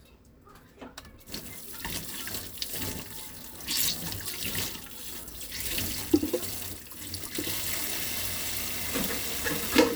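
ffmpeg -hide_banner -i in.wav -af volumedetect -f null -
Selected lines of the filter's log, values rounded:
mean_volume: -32.5 dB
max_volume: -5.2 dB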